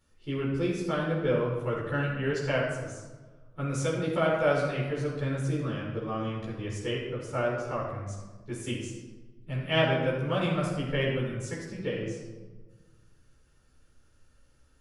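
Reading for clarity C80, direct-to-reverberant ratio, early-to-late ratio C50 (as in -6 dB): 3.5 dB, -6.0 dB, 1.5 dB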